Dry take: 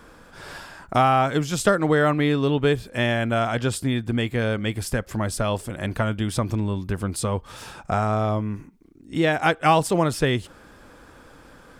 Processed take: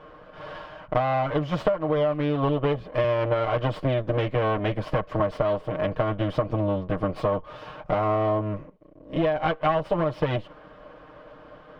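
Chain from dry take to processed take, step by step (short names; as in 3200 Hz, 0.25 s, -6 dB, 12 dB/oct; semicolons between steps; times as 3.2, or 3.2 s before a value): minimum comb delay 6.5 ms; bell 590 Hz +13 dB 0.48 oct; compressor 12:1, threshold -19 dBFS, peak gain reduction 15 dB; air absorption 310 m; small resonant body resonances 1100/3000 Hz, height 10 dB, ringing for 25 ms; 3.04–5.2 three-band squash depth 40%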